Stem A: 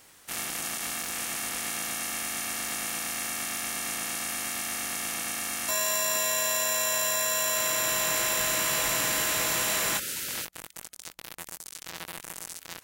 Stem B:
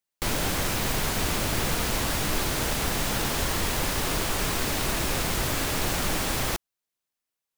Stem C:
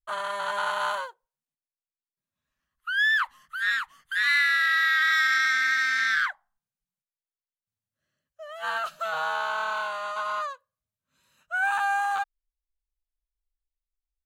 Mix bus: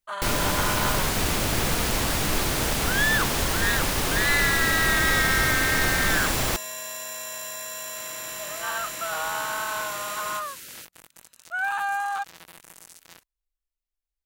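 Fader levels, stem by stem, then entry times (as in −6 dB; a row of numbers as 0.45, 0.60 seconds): −8.0, +2.0, −1.5 decibels; 0.40, 0.00, 0.00 seconds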